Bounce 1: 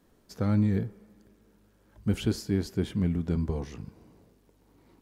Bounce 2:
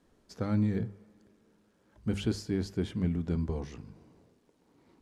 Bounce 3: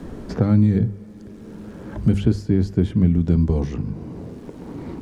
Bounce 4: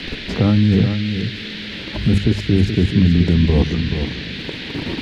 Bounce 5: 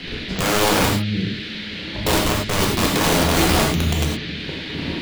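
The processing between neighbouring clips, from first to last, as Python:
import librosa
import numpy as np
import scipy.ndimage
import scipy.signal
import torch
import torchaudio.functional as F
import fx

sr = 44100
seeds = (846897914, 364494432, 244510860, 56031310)

y1 = scipy.signal.sosfilt(scipy.signal.butter(2, 9100.0, 'lowpass', fs=sr, output='sos'), x)
y1 = fx.hum_notches(y1, sr, base_hz=50, count=4)
y1 = F.gain(torch.from_numpy(y1), -2.5).numpy()
y2 = fx.low_shelf(y1, sr, hz=390.0, db=11.5)
y2 = fx.band_squash(y2, sr, depth_pct=70)
y2 = F.gain(torch.from_numpy(y2), 4.5).numpy()
y3 = fx.level_steps(y2, sr, step_db=11)
y3 = y3 + 10.0 ** (-8.5 / 20.0) * np.pad(y3, (int(428 * sr / 1000.0), 0))[:len(y3)]
y3 = fx.dmg_noise_band(y3, sr, seeds[0], low_hz=1600.0, high_hz=4200.0, level_db=-41.0)
y3 = F.gain(torch.from_numpy(y3), 9.0).numpy()
y4 = (np.mod(10.0 ** (10.5 / 20.0) * y3 + 1.0, 2.0) - 1.0) / 10.0 ** (10.5 / 20.0)
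y4 = fx.rev_gated(y4, sr, seeds[1], gate_ms=130, shape='flat', drr_db=-2.0)
y4 = F.gain(torch.from_numpy(y4), -5.0).numpy()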